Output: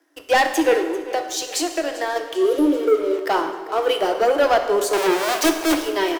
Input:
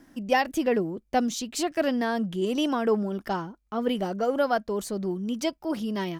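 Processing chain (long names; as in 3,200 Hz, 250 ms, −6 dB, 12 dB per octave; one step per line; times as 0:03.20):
0:04.93–0:05.75: each half-wave held at its own peak
Chebyshev high-pass filter 290 Hz, order 10
0:00.75–0:02.16: downward compressor, threshold −32 dBFS, peak gain reduction 12 dB
0:02.41–0:03.15: healed spectral selection 610–9,400 Hz
leveller curve on the samples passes 3
on a send: repeating echo 393 ms, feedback 56%, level −18 dB
on the sum: dense smooth reverb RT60 1.3 s, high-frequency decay 0.8×, DRR 5.5 dB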